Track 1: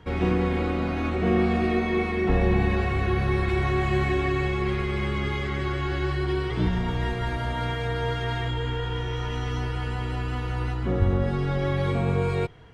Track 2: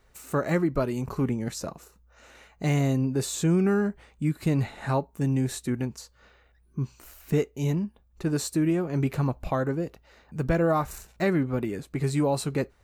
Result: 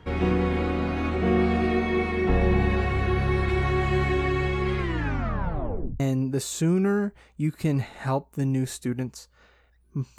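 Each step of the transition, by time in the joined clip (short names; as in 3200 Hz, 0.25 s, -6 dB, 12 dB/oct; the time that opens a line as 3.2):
track 1
4.78 tape stop 1.22 s
6 switch to track 2 from 2.82 s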